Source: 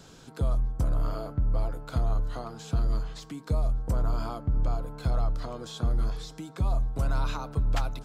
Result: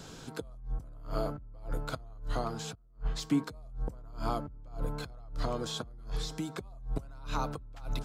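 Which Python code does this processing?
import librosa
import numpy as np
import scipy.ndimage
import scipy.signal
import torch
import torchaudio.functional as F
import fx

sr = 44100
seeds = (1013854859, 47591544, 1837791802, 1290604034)

y = fx.over_compress(x, sr, threshold_db=-32.0, ratio=-0.5)
y = fx.band_widen(y, sr, depth_pct=100, at=(2.75, 3.44))
y = F.gain(torch.from_numpy(y), -3.0).numpy()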